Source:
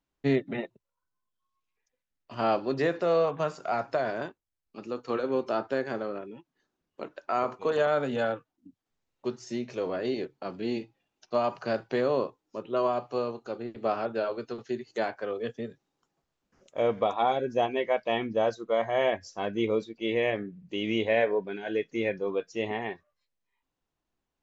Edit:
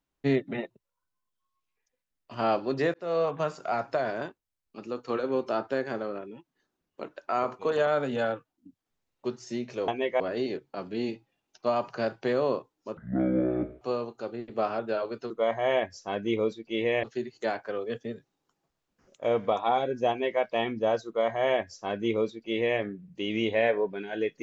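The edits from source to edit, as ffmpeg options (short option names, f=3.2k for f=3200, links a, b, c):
-filter_complex "[0:a]asplit=8[a][b][c][d][e][f][g][h];[a]atrim=end=2.94,asetpts=PTS-STARTPTS,afade=t=out:st=2.936:d=0.004:c=hsin[i];[b]atrim=start=2.94:end=9.882,asetpts=PTS-STARTPTS,afade=t=in:d=0.44:c=qsin[j];[c]atrim=start=17.628:end=17.952[k];[d]atrim=start=9.878:end=12.654[l];[e]atrim=start=12.65:end=13.08,asetpts=PTS-STARTPTS,asetrate=22491,aresample=44100,atrim=end_sample=37182,asetpts=PTS-STARTPTS[m];[f]atrim=start=13.076:end=14.572[n];[g]atrim=start=18.608:end=20.342[o];[h]atrim=start=14.568[p];[i][j]concat=n=2:v=0:a=1[q];[q][k]acrossfade=d=0.004:c1=hsin:c2=hsin[r];[r][l]acrossfade=d=0.004:c1=hsin:c2=hsin[s];[s][m]acrossfade=d=0.004:c1=hsin:c2=hsin[t];[t][n]acrossfade=d=0.004:c1=hsin:c2=hsin[u];[u][o]acrossfade=d=0.004:c1=hsin:c2=hsin[v];[v][p]acrossfade=d=0.004:c1=hsin:c2=hsin"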